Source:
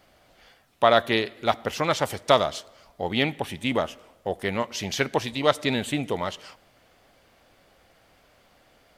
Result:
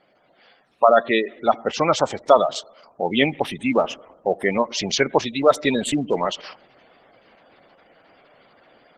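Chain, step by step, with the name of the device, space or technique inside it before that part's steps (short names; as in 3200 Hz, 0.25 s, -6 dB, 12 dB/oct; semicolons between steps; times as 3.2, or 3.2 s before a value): noise-suppressed video call (HPF 170 Hz 12 dB/oct; spectral gate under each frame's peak -15 dB strong; AGC gain up to 7 dB; gain +1 dB; Opus 16 kbps 48000 Hz)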